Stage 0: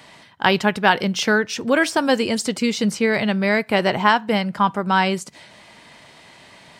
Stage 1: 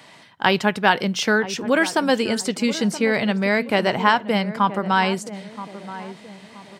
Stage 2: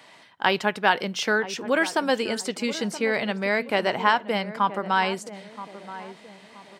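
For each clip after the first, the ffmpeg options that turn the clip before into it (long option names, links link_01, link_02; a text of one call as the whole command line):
ffmpeg -i in.wav -filter_complex "[0:a]highpass=100,asplit=2[link_01][link_02];[link_02]adelay=975,lowpass=frequency=960:poles=1,volume=-12.5dB,asplit=2[link_03][link_04];[link_04]adelay=975,lowpass=frequency=960:poles=1,volume=0.44,asplit=2[link_05][link_06];[link_06]adelay=975,lowpass=frequency=960:poles=1,volume=0.44,asplit=2[link_07][link_08];[link_08]adelay=975,lowpass=frequency=960:poles=1,volume=0.44[link_09];[link_01][link_03][link_05][link_07][link_09]amix=inputs=5:normalize=0,volume=-1dB" out.wav
ffmpeg -i in.wav -af "bass=frequency=250:gain=-8,treble=frequency=4000:gain=-2,volume=-3dB" out.wav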